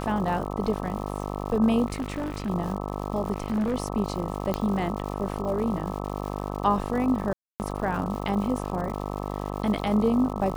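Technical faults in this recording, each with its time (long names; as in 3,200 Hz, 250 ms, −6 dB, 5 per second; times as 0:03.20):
mains buzz 50 Hz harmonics 26 −32 dBFS
surface crackle 230 per second −35 dBFS
0:01.86–0:02.50: clipping −25.5 dBFS
0:03.32–0:03.75: clipping −22 dBFS
0:04.54: click −13 dBFS
0:07.33–0:07.60: drop-out 269 ms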